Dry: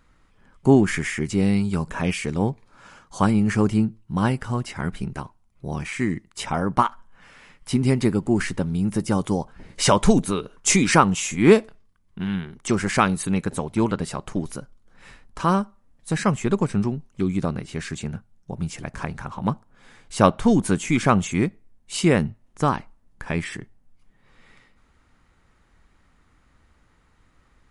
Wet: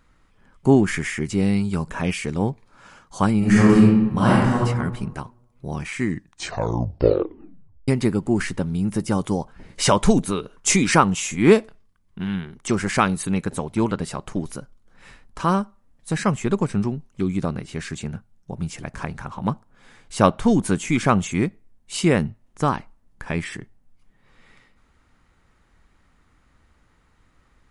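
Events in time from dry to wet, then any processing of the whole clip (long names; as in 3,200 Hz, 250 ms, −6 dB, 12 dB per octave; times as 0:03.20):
0:03.38–0:04.64: thrown reverb, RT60 1.1 s, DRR −6 dB
0:06.09: tape stop 1.79 s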